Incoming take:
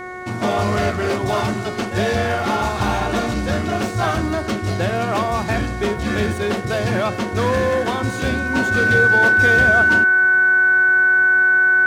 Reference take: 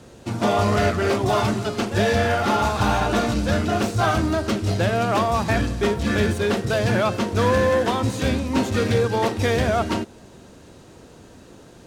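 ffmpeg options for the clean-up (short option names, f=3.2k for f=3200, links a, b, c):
-af "bandreject=f=366.2:t=h:w=4,bandreject=f=732.4:t=h:w=4,bandreject=f=1.0986k:t=h:w=4,bandreject=f=1.4648k:t=h:w=4,bandreject=f=1.831k:t=h:w=4,bandreject=f=2.1972k:t=h:w=4,bandreject=f=1.5k:w=30"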